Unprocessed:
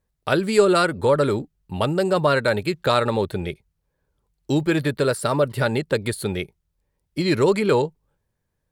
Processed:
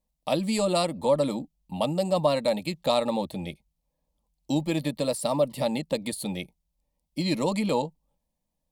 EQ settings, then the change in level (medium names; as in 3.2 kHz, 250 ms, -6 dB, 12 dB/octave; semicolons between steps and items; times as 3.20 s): static phaser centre 400 Hz, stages 6; -1.5 dB